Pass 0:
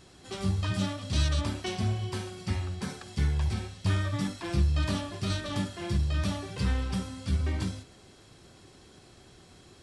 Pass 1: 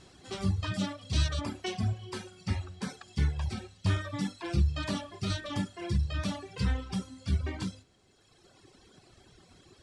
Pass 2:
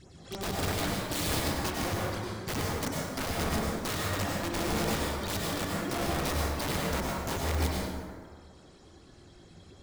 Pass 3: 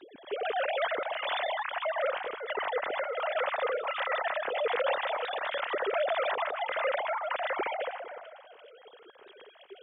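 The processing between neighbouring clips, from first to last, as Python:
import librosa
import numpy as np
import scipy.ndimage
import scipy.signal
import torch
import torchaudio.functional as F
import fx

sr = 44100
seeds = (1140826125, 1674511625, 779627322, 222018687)

y1 = fx.dereverb_blind(x, sr, rt60_s=1.9)
y1 = scipy.signal.sosfilt(scipy.signal.butter(2, 9500.0, 'lowpass', fs=sr, output='sos'), y1)
y2 = fx.phaser_stages(y1, sr, stages=12, low_hz=130.0, high_hz=4000.0, hz=3.2, feedback_pct=50)
y2 = (np.mod(10.0 ** (29.0 / 20.0) * y2 + 1.0, 2.0) - 1.0) / 10.0 ** (29.0 / 20.0)
y2 = fx.rev_plate(y2, sr, seeds[0], rt60_s=1.9, hf_ratio=0.45, predelay_ms=85, drr_db=-3.5)
y3 = fx.sine_speech(y2, sr)
y3 = y3 + 10.0 ** (-20.5 / 20.0) * np.pad(y3, (int(449 * sr / 1000.0), 0))[:len(y3)]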